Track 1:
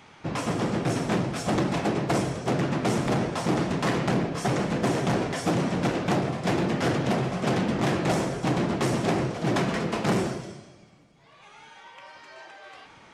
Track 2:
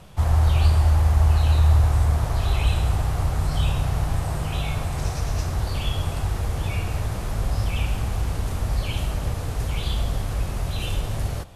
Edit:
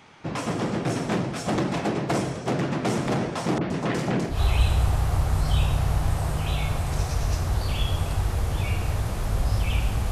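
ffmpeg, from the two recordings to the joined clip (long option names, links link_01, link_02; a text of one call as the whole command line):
ffmpeg -i cue0.wav -i cue1.wav -filter_complex "[0:a]asettb=1/sr,asplit=3[link_01][link_02][link_03];[link_01]atrim=end=3.584[link_04];[link_02]atrim=start=3.58:end=4.41,asetpts=PTS-STARTPTS,afade=type=in:duration=0.004:curve=qsin,afade=type=out:start_time=0.826:duration=0.004:curve=qsin,acrossover=split=1100|3900[link_05][link_06][link_07];[link_06]adelay=30[link_08];[link_07]adelay=120[link_09];[link_05][link_08][link_09]amix=inputs=3:normalize=0,atrim=end_sample=36603[link_10];[link_03]atrim=start=4.406[link_11];[link_04][link_10]acrossfade=duration=0.004:curve1=hsin:curve2=qsin[link_12];[link_12][link_11]acrossfade=duration=0.004:curve1=qsin:curve2=hsin,apad=whole_dur=10.11,atrim=end=10.11,atrim=end=4.41,asetpts=PTS-STARTPTS[link_13];[1:a]atrim=start=2.33:end=8.17,asetpts=PTS-STARTPTS[link_14];[link_13][link_14]acrossfade=duration=0.14:curve1=tri:curve2=tri" out.wav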